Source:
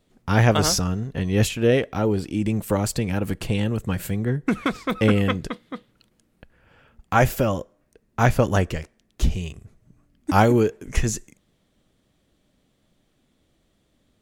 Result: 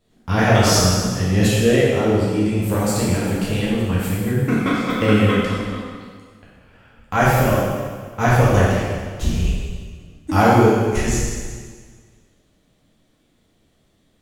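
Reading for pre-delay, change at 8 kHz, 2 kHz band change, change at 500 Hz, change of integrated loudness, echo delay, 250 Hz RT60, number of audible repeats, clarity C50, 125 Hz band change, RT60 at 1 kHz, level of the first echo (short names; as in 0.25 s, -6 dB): 5 ms, +5.0 dB, +5.0 dB, +4.5 dB, +4.5 dB, none, 1.7 s, none, -1.5 dB, +4.5 dB, 1.7 s, none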